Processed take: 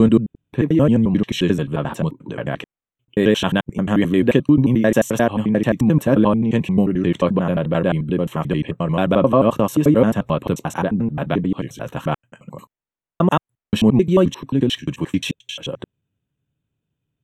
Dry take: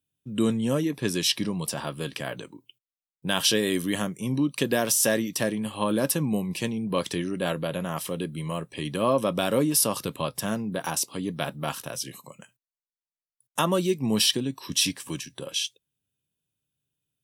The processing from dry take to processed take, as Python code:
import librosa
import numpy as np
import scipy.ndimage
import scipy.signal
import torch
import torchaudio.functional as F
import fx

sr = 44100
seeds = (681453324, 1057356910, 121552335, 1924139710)

y = fx.block_reorder(x, sr, ms=88.0, group=6)
y = np.convolve(y, np.full(9, 1.0 / 9))[:len(y)]
y = fx.low_shelf(y, sr, hz=390.0, db=6.5)
y = F.gain(torch.from_numpy(y), 7.0).numpy()